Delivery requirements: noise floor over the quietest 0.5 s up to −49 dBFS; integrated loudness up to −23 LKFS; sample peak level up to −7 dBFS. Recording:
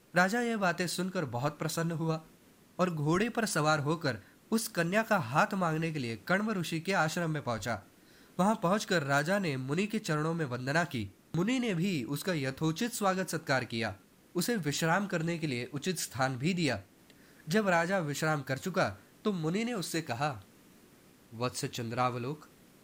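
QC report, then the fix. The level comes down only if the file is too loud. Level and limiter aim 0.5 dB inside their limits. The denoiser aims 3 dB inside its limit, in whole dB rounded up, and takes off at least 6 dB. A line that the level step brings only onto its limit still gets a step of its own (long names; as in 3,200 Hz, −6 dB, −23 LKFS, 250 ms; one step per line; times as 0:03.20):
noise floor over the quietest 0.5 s −60 dBFS: in spec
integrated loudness −32.0 LKFS: in spec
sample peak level −13.0 dBFS: in spec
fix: no processing needed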